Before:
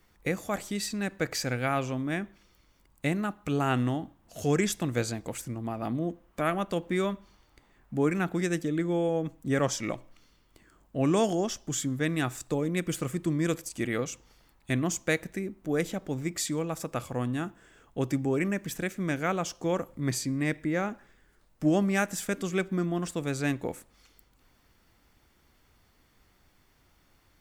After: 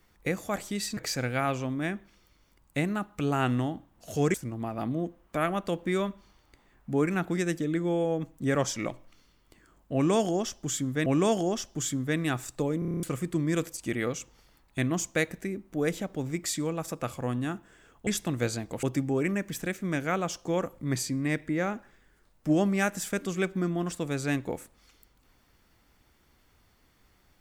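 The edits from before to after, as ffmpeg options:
-filter_complex "[0:a]asplit=14[s0][s1][s2][s3][s4][s5][s6][s7][s8][s9][s10][s11][s12][s13];[s0]atrim=end=0.972[s14];[s1]atrim=start=1.248:end=4.622[s15];[s2]atrim=start=5.378:end=12.102[s16];[s3]atrim=start=10.978:end=12.742[s17];[s4]atrim=start=12.708:end=12.742[s18];[s5]atrim=start=12.708:end=12.742[s19];[s6]atrim=start=12.708:end=12.742[s20];[s7]atrim=start=12.708:end=12.742[s21];[s8]atrim=start=12.708:end=12.742[s22];[s9]atrim=start=12.708:end=12.742[s23];[s10]atrim=start=12.708:end=12.742[s24];[s11]atrim=start=12.948:end=17.992[s25];[s12]atrim=start=4.618:end=5.382[s26];[s13]atrim=start=17.988[s27];[s14][s15]acrossfade=d=0.004:c1=hsin:c2=hsin[s28];[s28][s16]acrossfade=d=0.004:c1=hsin:c2=hsin[s29];[s29][s17]acrossfade=d=0.004:c1=hsin:c2=hsin[s30];[s30][s18]acrossfade=d=0.004:c1=hsin:c2=hsin[s31];[s31][s19]acrossfade=d=0.004:c1=hsin:c2=hsin[s32];[s32][s20]acrossfade=d=0.004:c1=hsin:c2=hsin[s33];[s33][s21]acrossfade=d=0.004:c1=hsin:c2=hsin[s34];[s34][s22]acrossfade=d=0.004:c1=hsin:c2=hsin[s35];[s35][s23]acrossfade=d=0.004:c1=hsin:c2=hsin[s36];[s36][s24]acrossfade=d=0.004:c1=hsin:c2=hsin[s37];[s37][s25]acrossfade=d=0.004:c1=hsin:c2=hsin[s38];[s38][s26]acrossfade=d=0.004:c1=hsin:c2=hsin[s39];[s39][s27]acrossfade=d=0.004:c1=hsin:c2=hsin"

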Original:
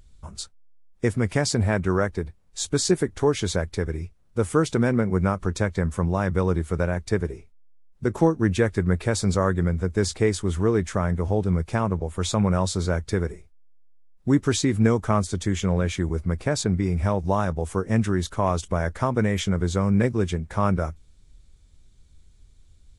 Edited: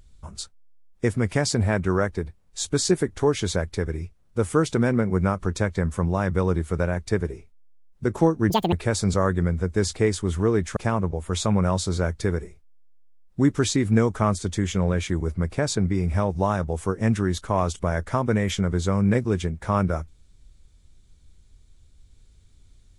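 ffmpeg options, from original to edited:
-filter_complex "[0:a]asplit=4[s0][s1][s2][s3];[s0]atrim=end=8.504[s4];[s1]atrim=start=8.5:end=8.93,asetpts=PTS-STARTPTS,asetrate=84231,aresample=44100,atrim=end_sample=9928,asetpts=PTS-STARTPTS[s5];[s2]atrim=start=8.926:end=10.972[s6];[s3]atrim=start=11.648[s7];[s4][s5]acrossfade=d=0.004:c1=hsin:c2=hsin[s8];[s8][s6]acrossfade=d=0.004:c1=hsin:c2=hsin[s9];[s9][s7]acrossfade=d=0.004:c1=hsin:c2=hsin"

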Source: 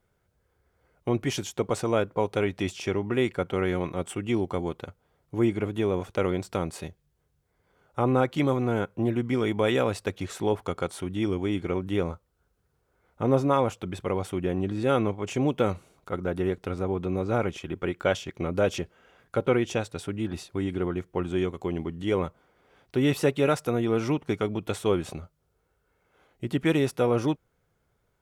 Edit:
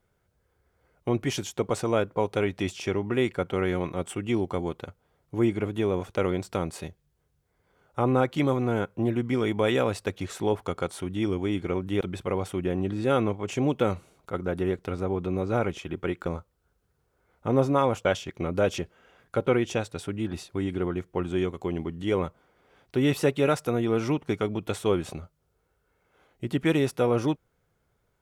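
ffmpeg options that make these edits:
-filter_complex "[0:a]asplit=4[s0][s1][s2][s3];[s0]atrim=end=12.012[s4];[s1]atrim=start=13.798:end=18.052[s5];[s2]atrim=start=12.008:end=13.802[s6];[s3]atrim=start=18.048[s7];[s4][s5]acrossfade=d=0.004:c1=hsin:c2=hsin[s8];[s8][s6]acrossfade=d=0.004:c1=hsin:c2=hsin[s9];[s9][s7]acrossfade=d=0.004:c1=hsin:c2=hsin"

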